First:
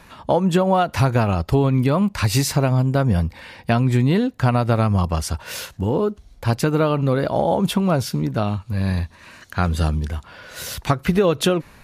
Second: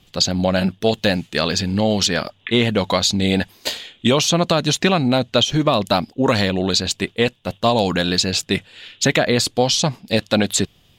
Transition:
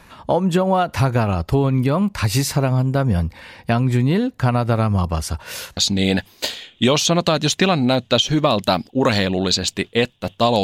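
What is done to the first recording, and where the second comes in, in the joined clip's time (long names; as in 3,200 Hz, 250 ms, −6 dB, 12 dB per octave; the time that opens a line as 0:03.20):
first
0:05.77: continue with second from 0:03.00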